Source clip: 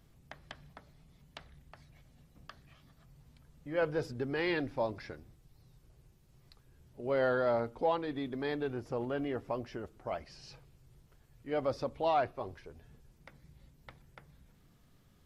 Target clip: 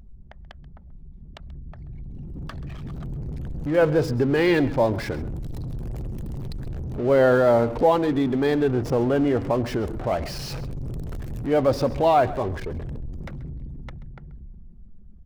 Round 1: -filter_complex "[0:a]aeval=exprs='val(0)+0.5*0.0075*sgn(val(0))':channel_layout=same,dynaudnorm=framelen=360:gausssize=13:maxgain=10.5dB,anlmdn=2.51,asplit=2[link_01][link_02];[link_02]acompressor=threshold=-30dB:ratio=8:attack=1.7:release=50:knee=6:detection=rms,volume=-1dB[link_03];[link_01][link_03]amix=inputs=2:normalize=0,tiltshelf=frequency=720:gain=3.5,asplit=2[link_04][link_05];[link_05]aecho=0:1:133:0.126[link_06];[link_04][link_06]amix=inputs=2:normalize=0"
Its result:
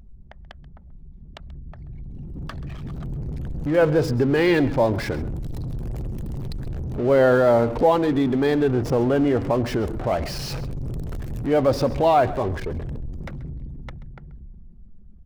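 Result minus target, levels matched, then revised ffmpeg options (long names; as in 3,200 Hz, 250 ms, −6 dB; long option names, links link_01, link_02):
downward compressor: peak gain reduction −10 dB
-filter_complex "[0:a]aeval=exprs='val(0)+0.5*0.0075*sgn(val(0))':channel_layout=same,dynaudnorm=framelen=360:gausssize=13:maxgain=10.5dB,anlmdn=2.51,asplit=2[link_01][link_02];[link_02]acompressor=threshold=-41.5dB:ratio=8:attack=1.7:release=50:knee=6:detection=rms,volume=-1dB[link_03];[link_01][link_03]amix=inputs=2:normalize=0,tiltshelf=frequency=720:gain=3.5,asplit=2[link_04][link_05];[link_05]aecho=0:1:133:0.126[link_06];[link_04][link_06]amix=inputs=2:normalize=0"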